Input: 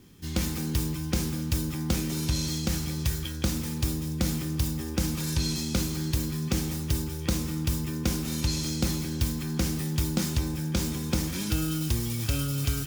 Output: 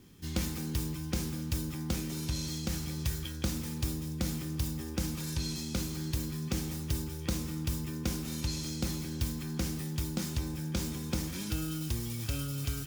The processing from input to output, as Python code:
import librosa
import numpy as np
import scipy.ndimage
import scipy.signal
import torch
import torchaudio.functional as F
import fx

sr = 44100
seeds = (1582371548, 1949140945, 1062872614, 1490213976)

y = fx.rider(x, sr, range_db=10, speed_s=0.5)
y = y * 10.0 ** (-6.0 / 20.0)